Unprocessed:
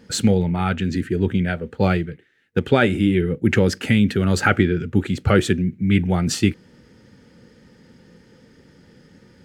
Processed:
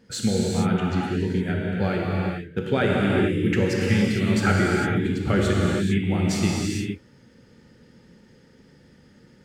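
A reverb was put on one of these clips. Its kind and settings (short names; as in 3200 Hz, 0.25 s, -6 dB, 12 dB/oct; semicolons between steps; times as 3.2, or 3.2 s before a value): non-linear reverb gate 0.48 s flat, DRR -3.5 dB; gain -8 dB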